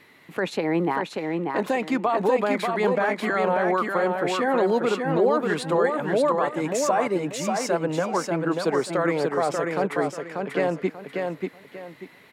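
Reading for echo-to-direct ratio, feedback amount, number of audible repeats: −3.5 dB, 28%, 3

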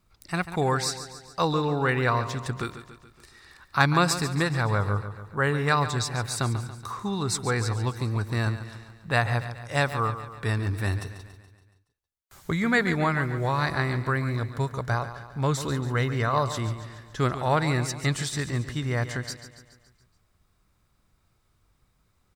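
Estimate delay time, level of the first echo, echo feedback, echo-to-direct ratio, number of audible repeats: 141 ms, −12.0 dB, 54%, −10.5 dB, 5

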